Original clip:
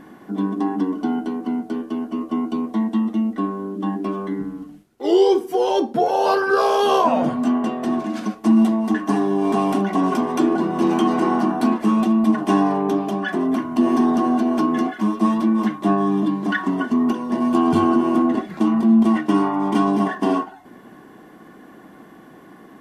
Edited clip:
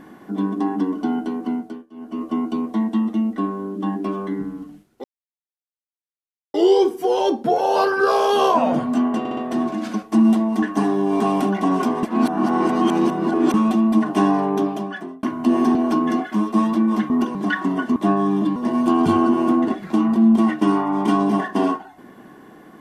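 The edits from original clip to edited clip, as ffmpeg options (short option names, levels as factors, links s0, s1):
-filter_complex "[0:a]asplit=15[s0][s1][s2][s3][s4][s5][s6][s7][s8][s9][s10][s11][s12][s13][s14];[s0]atrim=end=1.86,asetpts=PTS-STARTPTS,afade=t=out:st=1.52:d=0.34:silence=0.0794328[s15];[s1]atrim=start=1.86:end=1.91,asetpts=PTS-STARTPTS,volume=0.0794[s16];[s2]atrim=start=1.91:end=5.04,asetpts=PTS-STARTPTS,afade=t=in:d=0.34:silence=0.0794328,afade=t=out:st=3.126:d=0.004:c=hsin,apad=pad_dur=1.5[s17];[s3]atrim=start=5.04:end=7.752,asetpts=PTS-STARTPTS,afade=t=in:d=0.004:c=hsin[s18];[s4]atrim=start=7.688:end=7.752[s19];[s5]atrim=start=7.688:end=7.752[s20];[s6]atrim=start=7.688:end=10.352[s21];[s7]atrim=start=10.348:end=11.862,asetpts=PTS-STARTPTS,areverse[s22];[s8]atrim=start=11.858:end=13.55,asetpts=PTS-STARTPTS,afade=t=out:st=1.102:d=0.59[s23];[s9]atrim=start=13.55:end=14.072,asetpts=PTS-STARTPTS,afade=t=in:d=0.004:c=hsin[s24];[s10]atrim=start=14.418:end=15.772[s25];[s11]atrim=start=16.978:end=17.232[s26];[s12]atrim=start=16.368:end=16.982[s27];[s13]atrim=start=15.768:end=16.372[s28];[s14]atrim=start=17.228[s29];[s15][s16][s17][s18]concat=n=4:v=0:a=1[s30];[s30][s19]acrossfade=d=0.004:c1=hsin:c2=hsin[s31];[s31][s20]acrossfade=d=0.004:c1=hsin:c2=hsin[s32];[s32][s21]acrossfade=d=0.004:c1=hsin:c2=hsin[s33];[s33][s22]acrossfade=d=0.004:c1=hsin:c2=hsin[s34];[s23][s24]concat=n=2:v=0:a=1[s35];[s34][s35]acrossfade=d=0.004:c1=hsin:c2=hsin[s36];[s36][s25]acrossfade=d=0.004:c1=hsin:c2=hsin[s37];[s37][s26]acrossfade=d=0.004:c1=hsin:c2=hsin[s38];[s38][s27]acrossfade=d=0.004:c1=hsin:c2=hsin[s39];[s39][s28]acrossfade=d=0.004:c1=hsin:c2=hsin[s40];[s40][s29]acrossfade=d=0.004:c1=hsin:c2=hsin"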